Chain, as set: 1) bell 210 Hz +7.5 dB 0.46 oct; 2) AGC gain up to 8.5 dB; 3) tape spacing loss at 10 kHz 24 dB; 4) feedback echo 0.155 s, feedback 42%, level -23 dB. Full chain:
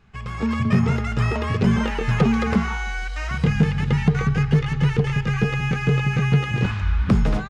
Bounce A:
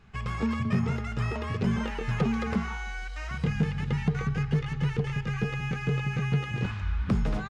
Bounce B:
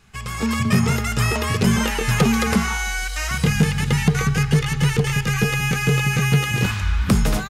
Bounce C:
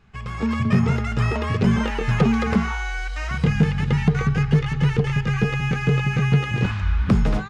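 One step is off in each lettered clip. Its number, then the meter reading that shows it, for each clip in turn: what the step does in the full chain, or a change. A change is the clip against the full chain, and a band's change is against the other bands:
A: 2, momentary loudness spread change -2 LU; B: 3, 4 kHz band +7.0 dB; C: 4, echo-to-direct -22.0 dB to none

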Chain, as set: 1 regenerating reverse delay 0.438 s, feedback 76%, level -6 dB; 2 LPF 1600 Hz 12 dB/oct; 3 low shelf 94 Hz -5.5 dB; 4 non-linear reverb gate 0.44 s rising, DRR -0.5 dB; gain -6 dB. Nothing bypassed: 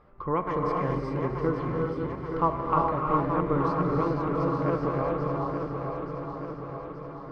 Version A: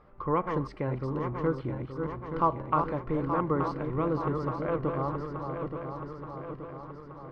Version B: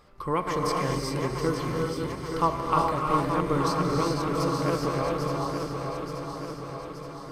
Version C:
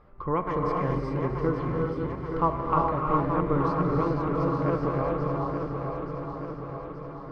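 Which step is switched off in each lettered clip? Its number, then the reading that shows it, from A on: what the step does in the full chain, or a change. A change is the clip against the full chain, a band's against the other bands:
4, loudness change -3.0 LU; 2, 2 kHz band +4.0 dB; 3, 125 Hz band +1.5 dB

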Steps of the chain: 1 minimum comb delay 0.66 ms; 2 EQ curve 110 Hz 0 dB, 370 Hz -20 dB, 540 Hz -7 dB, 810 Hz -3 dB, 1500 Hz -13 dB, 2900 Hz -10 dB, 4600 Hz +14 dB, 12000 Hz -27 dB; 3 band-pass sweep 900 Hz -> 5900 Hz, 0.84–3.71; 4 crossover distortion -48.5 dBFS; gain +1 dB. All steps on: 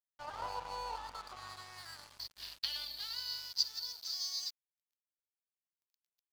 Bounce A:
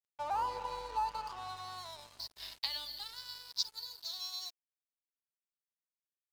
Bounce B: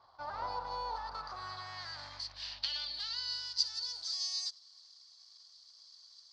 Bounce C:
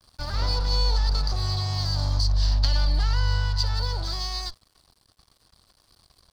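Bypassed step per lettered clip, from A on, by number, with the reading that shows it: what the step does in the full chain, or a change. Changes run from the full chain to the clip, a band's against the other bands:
1, 1 kHz band +8.0 dB; 4, distortion -11 dB; 3, 500 Hz band +5.0 dB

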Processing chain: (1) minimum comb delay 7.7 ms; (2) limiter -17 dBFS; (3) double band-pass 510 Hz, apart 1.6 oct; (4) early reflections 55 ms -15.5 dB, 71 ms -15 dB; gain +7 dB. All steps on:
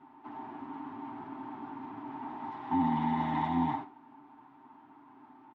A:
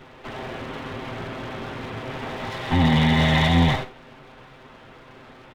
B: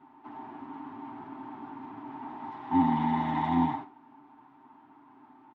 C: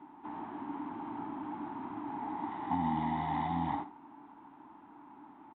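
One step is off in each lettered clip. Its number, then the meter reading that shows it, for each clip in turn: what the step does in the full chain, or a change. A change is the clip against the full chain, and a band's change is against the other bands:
3, 1 kHz band -15.0 dB; 2, crest factor change +3.0 dB; 1, 250 Hz band -2.0 dB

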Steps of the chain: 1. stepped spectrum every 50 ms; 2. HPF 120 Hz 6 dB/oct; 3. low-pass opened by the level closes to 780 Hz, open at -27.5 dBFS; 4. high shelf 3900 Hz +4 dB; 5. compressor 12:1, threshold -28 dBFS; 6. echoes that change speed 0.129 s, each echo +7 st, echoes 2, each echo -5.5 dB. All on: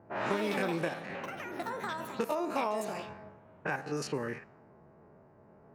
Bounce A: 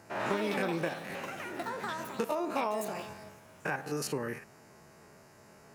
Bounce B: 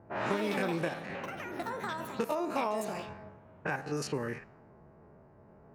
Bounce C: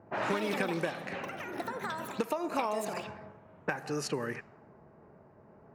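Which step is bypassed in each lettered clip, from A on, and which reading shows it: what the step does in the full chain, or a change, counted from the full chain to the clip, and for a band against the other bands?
3, 8 kHz band +4.0 dB; 2, 125 Hz band +2.0 dB; 1, 8 kHz band +2.5 dB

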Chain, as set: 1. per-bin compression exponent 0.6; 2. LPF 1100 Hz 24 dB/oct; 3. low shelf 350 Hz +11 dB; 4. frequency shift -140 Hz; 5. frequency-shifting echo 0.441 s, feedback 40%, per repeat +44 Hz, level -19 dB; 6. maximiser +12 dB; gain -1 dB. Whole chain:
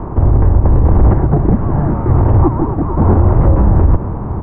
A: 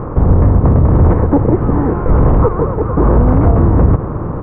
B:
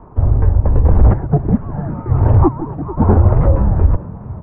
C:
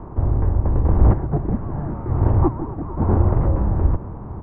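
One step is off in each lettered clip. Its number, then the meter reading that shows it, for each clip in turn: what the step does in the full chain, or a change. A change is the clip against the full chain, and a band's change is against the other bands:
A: 4, 125 Hz band -3.0 dB; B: 1, crest factor change +2.0 dB; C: 6, crest factor change +7.0 dB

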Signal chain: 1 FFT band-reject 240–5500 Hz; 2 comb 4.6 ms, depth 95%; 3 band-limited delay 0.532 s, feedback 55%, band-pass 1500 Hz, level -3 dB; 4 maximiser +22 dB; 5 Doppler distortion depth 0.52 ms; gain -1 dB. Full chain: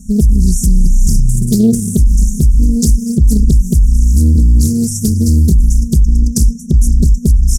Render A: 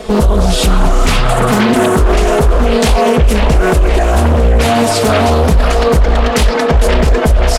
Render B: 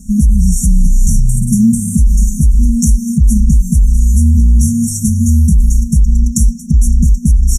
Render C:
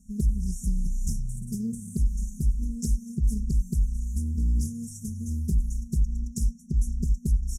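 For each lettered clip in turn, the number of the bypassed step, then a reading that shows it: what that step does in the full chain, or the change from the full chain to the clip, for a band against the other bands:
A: 1, 500 Hz band +18.5 dB; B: 5, 4 kHz band -4.5 dB; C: 4, crest factor change +5.5 dB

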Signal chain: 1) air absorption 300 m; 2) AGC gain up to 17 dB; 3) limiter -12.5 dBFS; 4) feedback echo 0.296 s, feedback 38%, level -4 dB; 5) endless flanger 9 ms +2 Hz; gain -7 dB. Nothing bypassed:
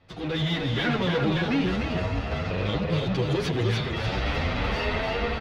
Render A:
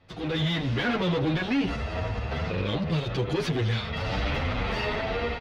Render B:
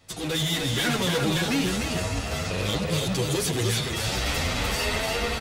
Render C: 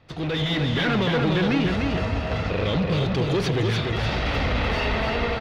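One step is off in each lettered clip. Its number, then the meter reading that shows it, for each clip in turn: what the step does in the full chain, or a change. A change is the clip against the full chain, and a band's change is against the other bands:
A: 4, momentary loudness spread change +1 LU; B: 1, 4 kHz band +6.0 dB; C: 5, crest factor change -3.5 dB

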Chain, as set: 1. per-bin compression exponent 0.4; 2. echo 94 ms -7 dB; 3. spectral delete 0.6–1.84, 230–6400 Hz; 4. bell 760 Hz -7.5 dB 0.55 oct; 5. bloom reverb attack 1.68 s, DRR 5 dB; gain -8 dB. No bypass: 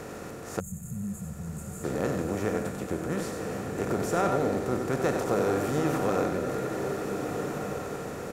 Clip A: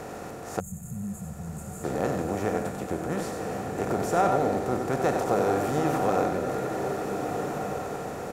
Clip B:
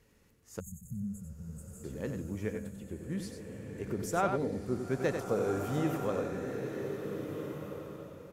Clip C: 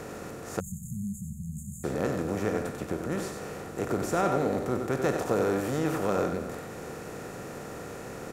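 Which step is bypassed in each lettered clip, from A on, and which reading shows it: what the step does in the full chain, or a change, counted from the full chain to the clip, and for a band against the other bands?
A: 4, 1 kHz band +5.0 dB; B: 1, 125 Hz band +2.5 dB; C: 5, momentary loudness spread change +3 LU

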